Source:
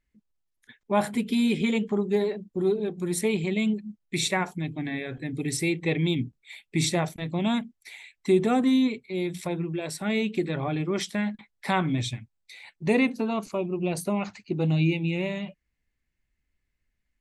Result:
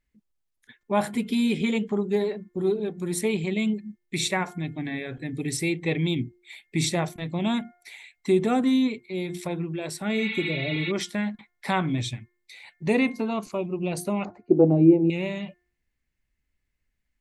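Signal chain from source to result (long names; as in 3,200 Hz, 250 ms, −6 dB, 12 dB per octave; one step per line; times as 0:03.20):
hum removal 354.6 Hz, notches 6
0:10.20–0:10.89: healed spectral selection 720–5,900 Hz before
0:14.25–0:15.10: drawn EQ curve 200 Hz 0 dB, 330 Hz +13 dB, 650 Hz +11 dB, 3,200 Hz −27 dB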